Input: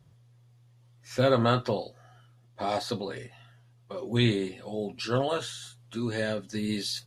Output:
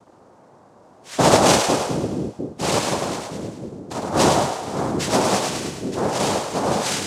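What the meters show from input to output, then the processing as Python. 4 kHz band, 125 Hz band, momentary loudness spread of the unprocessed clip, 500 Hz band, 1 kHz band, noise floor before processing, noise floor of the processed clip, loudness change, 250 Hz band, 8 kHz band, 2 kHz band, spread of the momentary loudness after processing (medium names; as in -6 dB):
+9.5 dB, +4.5 dB, 15 LU, +8.5 dB, +13.5 dB, -60 dBFS, -51 dBFS, +8.5 dB, +8.0 dB, +20.0 dB, +9.0 dB, 14 LU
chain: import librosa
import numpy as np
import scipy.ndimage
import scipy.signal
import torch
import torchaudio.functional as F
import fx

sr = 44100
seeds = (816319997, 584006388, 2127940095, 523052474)

y = fx.noise_vocoder(x, sr, seeds[0], bands=2)
y = fx.echo_split(y, sr, split_hz=440.0, low_ms=703, high_ms=105, feedback_pct=52, wet_db=-5.0)
y = y * librosa.db_to_amplitude(7.5)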